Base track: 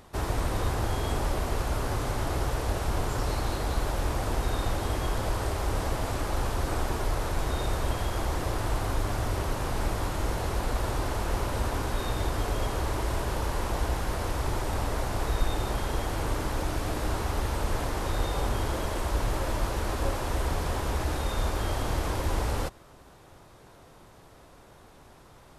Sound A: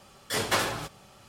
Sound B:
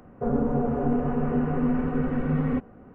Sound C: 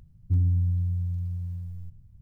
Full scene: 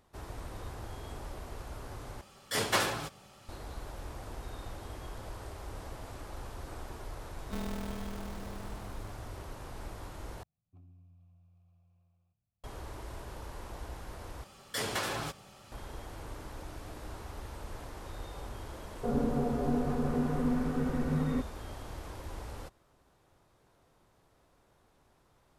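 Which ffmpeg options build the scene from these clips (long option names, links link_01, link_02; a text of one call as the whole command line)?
ffmpeg -i bed.wav -i cue0.wav -i cue1.wav -i cue2.wav -filter_complex "[1:a]asplit=2[link_01][link_02];[3:a]asplit=2[link_03][link_04];[0:a]volume=-14.5dB[link_05];[link_03]aeval=exprs='val(0)*sgn(sin(2*PI*110*n/s))':channel_layout=same[link_06];[link_04]asplit=3[link_07][link_08][link_09];[link_07]bandpass=frequency=730:width_type=q:width=8,volume=0dB[link_10];[link_08]bandpass=frequency=1090:width_type=q:width=8,volume=-6dB[link_11];[link_09]bandpass=frequency=2440:width_type=q:width=8,volume=-9dB[link_12];[link_10][link_11][link_12]amix=inputs=3:normalize=0[link_13];[link_02]acompressor=threshold=-29dB:ratio=4:attack=4.4:release=120:knee=1:detection=rms[link_14];[link_05]asplit=4[link_15][link_16][link_17][link_18];[link_15]atrim=end=2.214[link_19];[link_01]atrim=end=1.28,asetpts=PTS-STARTPTS,volume=-2.5dB[link_20];[link_16]atrim=start=3.486:end=10.434[link_21];[link_13]atrim=end=2.21,asetpts=PTS-STARTPTS,volume=-2dB[link_22];[link_17]atrim=start=12.636:end=14.444[link_23];[link_14]atrim=end=1.28,asetpts=PTS-STARTPTS,volume=-1dB[link_24];[link_18]atrim=start=15.716[link_25];[link_06]atrim=end=2.21,asetpts=PTS-STARTPTS,volume=-15dB,afade=type=in:duration=0.004:curve=hsin,afade=type=out:start_time=2.206:duration=0.004:curve=hsin,adelay=7210[link_26];[2:a]atrim=end=2.94,asetpts=PTS-STARTPTS,volume=-6dB,afade=type=in:duration=0.004:curve=hsin,afade=type=out:start_time=2.936:duration=0.004:curve=hsin,adelay=18820[link_27];[link_19][link_20]acrossfade=duration=0.004:curve1=hsin:curve2=hsin[link_28];[link_28][link_21]acrossfade=duration=0.004:curve1=hsin:curve2=hsin[link_29];[link_29][link_22]acrossfade=duration=0.004:curve1=hsin:curve2=hsin[link_30];[link_30][link_23]acrossfade=duration=0.004:curve1=hsin:curve2=hsin[link_31];[link_31][link_24]acrossfade=duration=0.004:curve1=hsin:curve2=hsin[link_32];[link_32][link_25]acrossfade=duration=0.004:curve1=hsin:curve2=hsin[link_33];[link_33][link_26][link_27]amix=inputs=3:normalize=0" out.wav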